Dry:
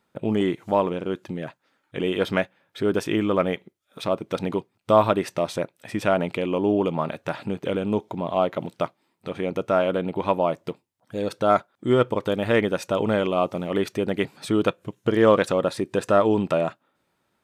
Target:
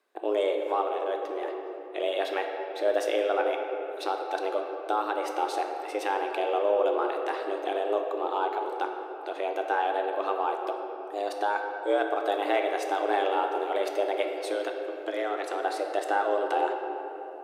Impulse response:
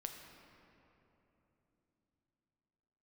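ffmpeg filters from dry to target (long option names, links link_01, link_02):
-filter_complex "[0:a]alimiter=limit=-12dB:level=0:latency=1:release=348,asettb=1/sr,asplit=3[link_01][link_02][link_03];[link_01]atrim=end=14.314[link_04];[link_02]atrim=start=14.31:end=15.62,asetpts=PTS-STARTPTS,afade=type=in:duration=0.004:curve=qsin,afade=type=out:start_time=1.306:duration=0.004:curve=qsin,acrossover=split=250|770[link_05][link_06][link_07];[link_05]acompressor=threshold=-30dB:ratio=4[link_08];[link_06]acompressor=threshold=-31dB:ratio=4[link_09];[link_07]acompressor=threshold=-31dB:ratio=4[link_10];[link_08][link_09][link_10]amix=inputs=3:normalize=0[link_11];[link_03]atrim=start=15.616[link_12];[link_04][link_11]acrossfade=duration=0.004:curve1=hsin:curve2=qsin[link_13];[link_13][link_12]acrossfade=duration=0.004:curve1=qsin:curve2=hsin[link_14];[1:a]atrim=start_sample=2205,asetrate=43659,aresample=44100[link_15];[link_14][link_15]afir=irnorm=-1:irlink=0,afreqshift=200"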